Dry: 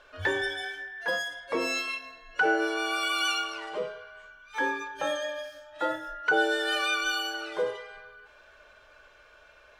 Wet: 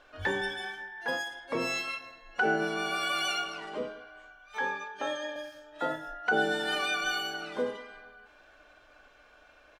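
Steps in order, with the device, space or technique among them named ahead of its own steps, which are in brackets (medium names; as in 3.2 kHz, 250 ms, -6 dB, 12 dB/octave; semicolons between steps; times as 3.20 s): 4.57–5.36 s: three-band isolator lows -21 dB, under 400 Hz, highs -16 dB, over 7.6 kHz; octave pedal (harmony voices -12 st -9 dB); trim -3 dB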